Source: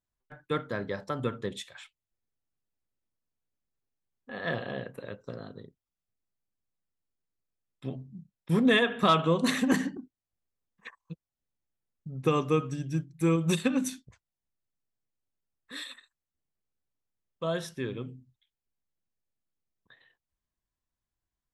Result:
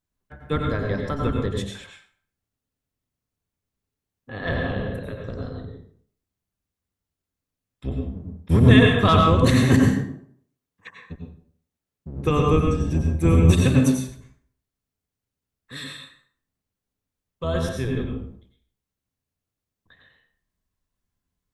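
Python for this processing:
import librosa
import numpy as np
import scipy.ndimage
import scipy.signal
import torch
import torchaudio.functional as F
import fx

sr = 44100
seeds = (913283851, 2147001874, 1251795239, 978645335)

y = fx.octave_divider(x, sr, octaves=1, level_db=4.0)
y = fx.low_shelf(y, sr, hz=76.0, db=-11.5, at=(9.79, 12.37))
y = fx.rev_plate(y, sr, seeds[0], rt60_s=0.55, hf_ratio=0.75, predelay_ms=80, drr_db=1.0)
y = F.gain(torch.from_numpy(y), 3.0).numpy()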